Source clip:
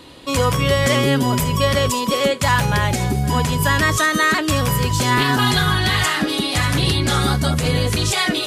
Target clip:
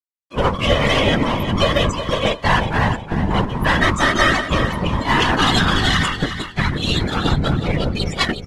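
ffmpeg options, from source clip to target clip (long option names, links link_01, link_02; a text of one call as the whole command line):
ffmpeg -i in.wav -filter_complex "[0:a]afftfilt=real='re*gte(hypot(re,im),0.2)':imag='im*gte(hypot(re,im),0.2)':win_size=1024:overlap=0.75,bandreject=frequency=60:width_type=h:width=6,bandreject=frequency=120:width_type=h:width=6,bandreject=frequency=180:width_type=h:width=6,bandreject=frequency=240:width_type=h:width=6,bandreject=frequency=300:width_type=h:width=6,bandreject=frequency=360:width_type=h:width=6,bandreject=frequency=420:width_type=h:width=6,bandreject=frequency=480:width_type=h:width=6,bandreject=frequency=540:width_type=h:width=6,bandreject=frequency=600:width_type=h:width=6,agate=range=-47dB:threshold=-19dB:ratio=16:detection=peak,equalizer=frequency=2900:width_type=o:width=0.41:gain=5,asplit=2[link_01][link_02];[link_02]acompressor=threshold=-26dB:ratio=5,volume=-1.5dB[link_03];[link_01][link_03]amix=inputs=2:normalize=0,aeval=exprs='clip(val(0),-1,0.0501)':channel_layout=same,afftfilt=real='hypot(re,im)*cos(2*PI*random(0))':imag='hypot(re,im)*sin(2*PI*random(1))':win_size=512:overlap=0.75,aeval=exprs='sgn(val(0))*max(abs(val(0))-0.002,0)':channel_layout=same,asplit=2[link_04][link_05];[link_05]aecho=0:1:363|726|1089:0.316|0.0791|0.0198[link_06];[link_04][link_06]amix=inputs=2:normalize=0,volume=7.5dB" -ar 48000 -c:a aac -b:a 32k out.aac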